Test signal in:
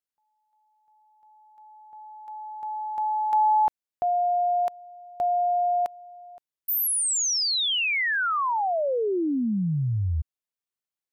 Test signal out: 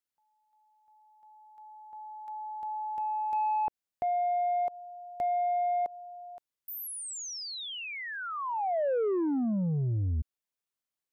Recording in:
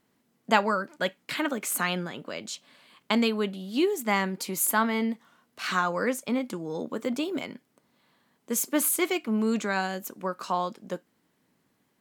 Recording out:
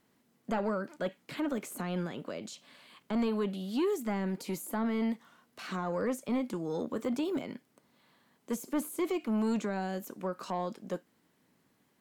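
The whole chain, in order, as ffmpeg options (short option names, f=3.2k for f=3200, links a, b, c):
-filter_complex "[0:a]acrossover=split=710[a][b];[a]asoftclip=type=tanh:threshold=-26dB[c];[b]acompressor=threshold=-39dB:ratio=6:attack=0.13:release=101:knee=6:detection=peak[d];[c][d]amix=inputs=2:normalize=0"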